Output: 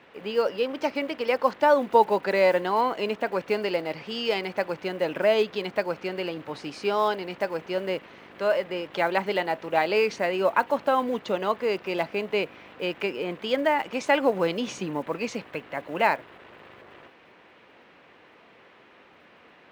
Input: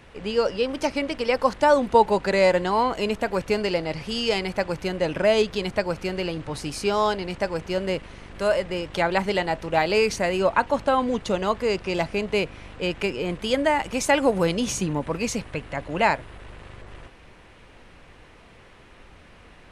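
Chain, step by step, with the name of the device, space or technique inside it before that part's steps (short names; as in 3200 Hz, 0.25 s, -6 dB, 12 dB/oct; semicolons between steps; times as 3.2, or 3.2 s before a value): early digital voice recorder (BPF 250–3700 Hz; block floating point 7-bit); gain -1.5 dB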